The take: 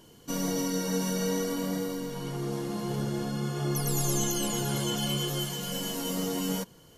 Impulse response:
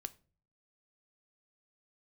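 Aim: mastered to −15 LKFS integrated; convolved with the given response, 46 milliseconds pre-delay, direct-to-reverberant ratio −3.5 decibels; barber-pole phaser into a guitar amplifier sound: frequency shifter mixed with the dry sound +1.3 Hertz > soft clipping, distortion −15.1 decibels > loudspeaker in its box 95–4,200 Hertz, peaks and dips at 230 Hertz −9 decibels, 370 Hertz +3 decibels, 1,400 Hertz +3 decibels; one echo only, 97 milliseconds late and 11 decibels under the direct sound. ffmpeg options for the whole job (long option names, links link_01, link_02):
-filter_complex "[0:a]aecho=1:1:97:0.282,asplit=2[link_01][link_02];[1:a]atrim=start_sample=2205,adelay=46[link_03];[link_02][link_03]afir=irnorm=-1:irlink=0,volume=7dB[link_04];[link_01][link_04]amix=inputs=2:normalize=0,asplit=2[link_05][link_06];[link_06]afreqshift=1.3[link_07];[link_05][link_07]amix=inputs=2:normalize=1,asoftclip=threshold=-22.5dB,highpass=95,equalizer=frequency=230:width_type=q:width=4:gain=-9,equalizer=frequency=370:width_type=q:width=4:gain=3,equalizer=frequency=1400:width_type=q:width=4:gain=3,lowpass=frequency=4200:width=0.5412,lowpass=frequency=4200:width=1.3066,volume=17dB"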